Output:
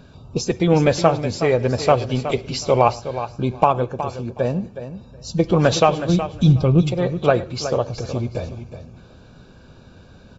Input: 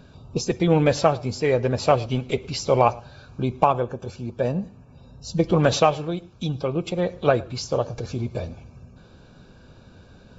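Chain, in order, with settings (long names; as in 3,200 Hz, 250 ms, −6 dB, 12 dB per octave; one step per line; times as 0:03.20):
0:06.09–0:06.83: bass and treble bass +14 dB, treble +3 dB
repeating echo 368 ms, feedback 16%, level −11 dB
level +2.5 dB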